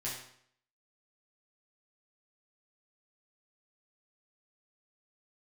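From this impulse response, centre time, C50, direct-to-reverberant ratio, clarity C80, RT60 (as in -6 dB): 44 ms, 3.0 dB, -7.0 dB, 6.5 dB, 0.65 s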